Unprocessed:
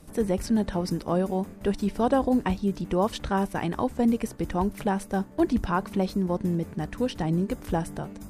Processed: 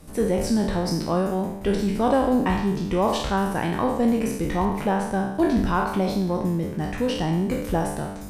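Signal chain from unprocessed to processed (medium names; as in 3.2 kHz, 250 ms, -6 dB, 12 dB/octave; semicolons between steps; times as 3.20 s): spectral sustain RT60 0.80 s; 4.65–5.35 s: treble shelf 6.5 kHz -8 dB; in parallel at -10 dB: saturation -25.5 dBFS, distortion -8 dB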